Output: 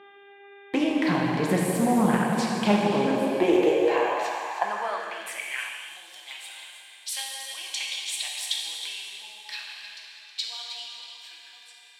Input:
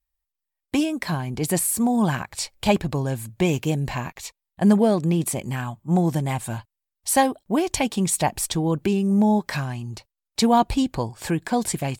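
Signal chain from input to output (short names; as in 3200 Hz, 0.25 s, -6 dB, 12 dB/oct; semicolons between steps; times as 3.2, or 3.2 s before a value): ending faded out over 2.94 s; buzz 400 Hz, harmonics 9, -53 dBFS -4 dB/oct; on a send: echo with dull and thin repeats by turns 0.159 s, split 910 Hz, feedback 59%, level -7.5 dB; on the sum: phaser 1.9 Hz, delay 2.6 ms, feedback 20%; high shelf 5600 Hz -7.5 dB; compressor 2:1, threshold -23 dBFS, peak gain reduction 7.5 dB; tone controls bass -14 dB, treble -8 dB; plate-style reverb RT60 3 s, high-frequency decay 0.9×, DRR -2 dB; high-pass sweep 170 Hz -> 3500 Hz, 2.86–6.06; Doppler distortion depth 0.21 ms; gain +1.5 dB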